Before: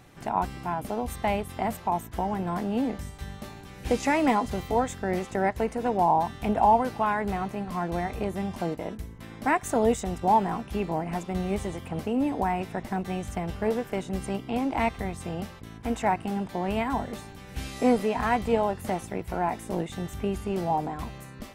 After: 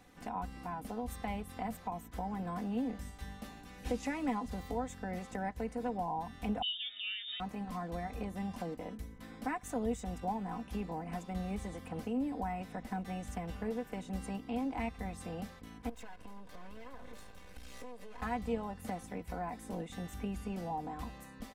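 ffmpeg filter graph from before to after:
-filter_complex "[0:a]asettb=1/sr,asplit=3[s0][s1][s2];[s0]atrim=end=6.624[s3];[s1]atrim=start=6.62:end=7.4,asetpts=PTS-STARTPTS,afade=t=in:d=0.004:c=qsin,afade=t=out:st=0.776:d=0.004:c=qsin,lowpass=f=3200:t=q:w=0.5098,lowpass=f=3200:t=q:w=0.6013,lowpass=f=3200:t=q:w=0.9,lowpass=f=3200:t=q:w=2.563,afreqshift=-3800,acrossover=split=350|3000[s4][s5][s6];[s5]acompressor=threshold=0.00794:ratio=1.5:attack=3.2:release=140:knee=2.83:detection=peak[s7];[s4][s7][s6]amix=inputs=3:normalize=0,asuperstop=centerf=1000:order=4:qfactor=2.4[s8];[s2]atrim=start=7.396[s9];[s3][s8]acrossfade=d=0.004:c1=hsin:c2=qsin[s10];[s10][s9]acrossfade=d=0.004:c1=qsin:c2=hsin,asettb=1/sr,asplit=3[s11][s12][s13];[s11]atrim=end=15.894[s14];[s12]atrim=start=15.89:end=18.22,asetpts=PTS-STARTPTS,afade=t=in:d=0.004:c=qsin,afade=t=out:st=2.326:d=0.004:c=qsin,aeval=exprs='max(val(0),0)':c=same,aecho=1:1:1.9:0.4,atrim=end_sample=102753,acompressor=threshold=0.0158:ratio=16:attack=3.2:release=140:knee=1:detection=peak[s15];[s13]atrim=start=18.216[s16];[s14][s15]acrossfade=d=0.004:c1=hsin:c2=qsin[s17];[s17][s16]acrossfade=d=0.004:c1=qsin:c2=hsin,acrossover=split=190[s18][s19];[s19]acompressor=threshold=0.02:ratio=2[s20];[s18][s20]amix=inputs=2:normalize=0,aecho=1:1:4:0.61,volume=0.398"

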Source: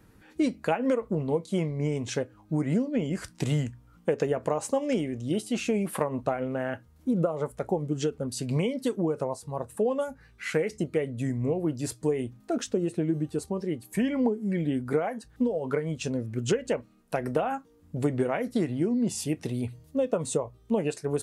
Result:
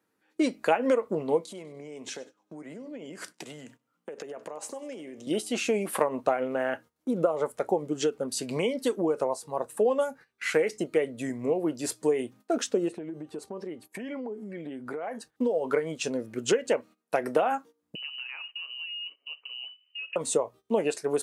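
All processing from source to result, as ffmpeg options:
-filter_complex "[0:a]asettb=1/sr,asplit=3[s0][s1][s2];[s0]atrim=end=1.454[s3];[s1]atrim=start=1.45:end=5.27,asetpts=PTS-STARTPTS,afade=t=in:d=0.004:c=qsin,afade=t=out:st=3.816:d=0.004:c=qsin,highpass=f=130:w=0.5412,highpass=f=130:w=1.3066,acompressor=threshold=0.0141:ratio=10:attack=3.2:release=140:knee=1:detection=peak,aecho=1:1:98|196|294|392:0.112|0.055|0.0269|0.0132,atrim=end_sample=168462[s4];[s2]atrim=start=5.266[s5];[s3][s4]acrossfade=d=0.004:c1=hsin:c2=qsin[s6];[s6][s5]acrossfade=d=0.004:c1=qsin:c2=hsin,asettb=1/sr,asplit=3[s7][s8][s9];[s7]atrim=end=12.884[s10];[s8]atrim=start=12.88:end=15.15,asetpts=PTS-STARTPTS,afade=t=in:d=0.004:c=qsin,afade=t=out:st=2.266:d=0.004:c=qsin,highshelf=f=4700:g=-10,acompressor=threshold=0.0251:ratio=10:attack=3.2:release=140:knee=1:detection=peak[s11];[s9]atrim=start=15.146[s12];[s10][s11]acrossfade=d=0.004:c1=hsin:c2=qsin[s13];[s13][s12]acrossfade=d=0.004:c1=qsin:c2=hsin,asettb=1/sr,asplit=3[s14][s15][s16];[s14]atrim=end=17.954[s17];[s15]atrim=start=17.95:end=20.16,asetpts=PTS-STARTPTS,afade=t=in:d=0.004:c=qsin,afade=t=out:st=2.206:d=0.004:c=qsin,acompressor=threshold=0.00447:ratio=2.5:attack=3.2:release=140:knee=1:detection=peak,aecho=1:1:92|184|276|368:0.0794|0.0421|0.0223|0.0118,atrim=end_sample=97461,lowpass=f=2600:t=q:w=0.5098,lowpass=f=2600:t=q:w=0.6013,lowpass=f=2600:t=q:w=0.9,lowpass=f=2600:t=q:w=2.563,afreqshift=-3100[s18];[s16]atrim=start=20.156[s19];[s17][s18]acrossfade=d=0.004:c1=hsin:c2=qsin[s20];[s20][s19]acrossfade=d=0.004:c1=qsin:c2=hsin,agate=range=0.141:threshold=0.00447:ratio=16:detection=peak,highpass=330,volume=1.5"

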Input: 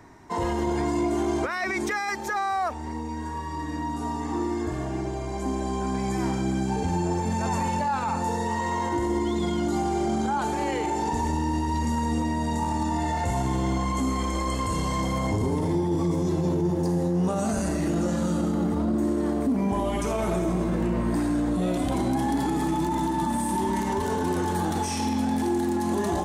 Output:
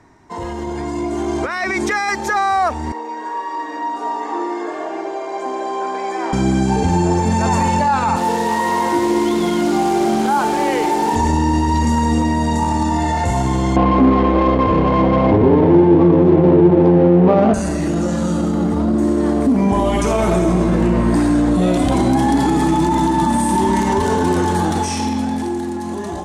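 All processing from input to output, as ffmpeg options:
-filter_complex "[0:a]asettb=1/sr,asplit=3[s0][s1][s2];[s0]atrim=end=2.924[s3];[s1]atrim=start=2.92:end=6.33,asetpts=PTS-STARTPTS,afade=t=in:d=0.004:c=qsin,afade=t=out:st=3.406:d=0.004:c=qsin,highpass=f=410:w=0.5412,highpass=f=410:w=1.3066,aemphasis=mode=reproduction:type=75fm[s4];[s2]atrim=start=6.326[s5];[s3][s4]acrossfade=d=0.004:c1=hsin:c2=qsin[s6];[s6][s5]acrossfade=d=0.004:c1=qsin:c2=hsin,asettb=1/sr,asplit=3[s7][s8][s9];[s7]atrim=end=8.164[s10];[s8]atrim=start=8.16:end=11.16,asetpts=PTS-STARTPTS,afade=t=in:d=0.004:c=qsin,afade=t=out:st=2.996:d=0.004:c=qsin,highpass=200,acrossover=split=3200[s11][s12];[s12]acompressor=threshold=0.00316:ratio=4:attack=1:release=60[s13];[s11][s13]amix=inputs=2:normalize=0,acrusher=bits=7:dc=4:mix=0:aa=0.000001[s14];[s9]atrim=start=11.156[s15];[s10][s14]acrossfade=d=0.004:c1=hsin:c2=qsin[s16];[s16][s15]acrossfade=d=0.004:c1=qsin:c2=hsin,asettb=1/sr,asplit=3[s17][s18][s19];[s17]atrim=end=13.764[s20];[s18]atrim=start=13.76:end=17.54,asetpts=PTS-STARTPTS,afade=t=in:d=0.004:c=qsin,afade=t=out:st=3.776:d=0.004:c=qsin,equalizer=f=460:t=o:w=2.5:g=10.5,adynamicsmooth=sensitivity=2.5:basefreq=600,lowpass=3000[s21];[s19]atrim=start=17.536[s22];[s20][s21]acrossfade=d=0.004:c1=hsin:c2=qsin[s23];[s23][s22]acrossfade=d=0.004:c1=qsin:c2=hsin,lowpass=10000,dynaudnorm=f=280:g=11:m=3.35"

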